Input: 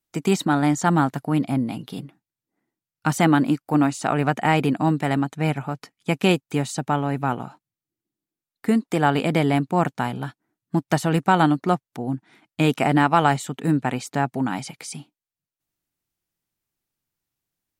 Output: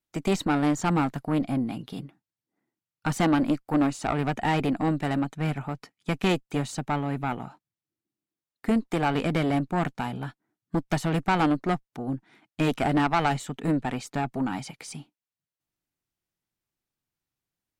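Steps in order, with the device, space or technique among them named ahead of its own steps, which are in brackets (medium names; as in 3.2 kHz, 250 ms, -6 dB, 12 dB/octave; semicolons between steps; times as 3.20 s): tube preamp driven hard (valve stage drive 15 dB, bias 0.6; treble shelf 6.8 kHz -6 dB)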